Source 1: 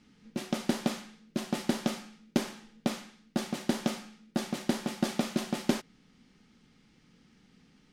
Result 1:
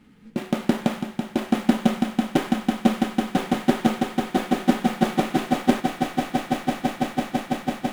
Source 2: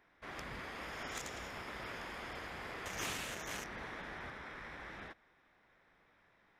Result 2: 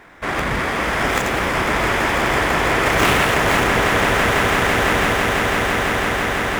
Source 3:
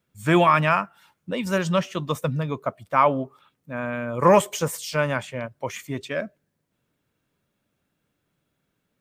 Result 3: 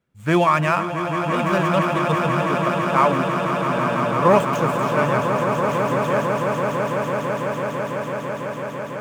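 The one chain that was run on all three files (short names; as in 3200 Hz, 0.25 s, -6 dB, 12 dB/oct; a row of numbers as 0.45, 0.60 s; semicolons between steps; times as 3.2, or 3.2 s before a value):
median filter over 9 samples; on a send: swelling echo 0.166 s, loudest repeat 8, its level -9 dB; on the sum: normalise peaks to -3 dBFS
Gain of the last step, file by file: +8.0, +25.0, +0.5 dB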